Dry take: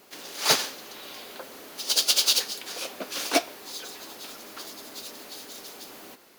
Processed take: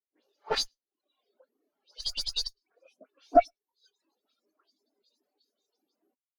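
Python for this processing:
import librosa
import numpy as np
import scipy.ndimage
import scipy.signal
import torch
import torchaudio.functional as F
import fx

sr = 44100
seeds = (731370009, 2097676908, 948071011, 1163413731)

p1 = fx.dispersion(x, sr, late='highs', ms=120.0, hz=2600.0)
p2 = fx.level_steps(p1, sr, step_db=23)
p3 = p1 + (p2 * librosa.db_to_amplitude(3.0))
p4 = fx.dereverb_blind(p3, sr, rt60_s=1.3)
p5 = fx.clip_asym(p4, sr, top_db=-25.5, bottom_db=-8.0)
p6 = p5 + fx.echo_single(p5, sr, ms=110, db=-20.5, dry=0)
y = fx.spectral_expand(p6, sr, expansion=2.5)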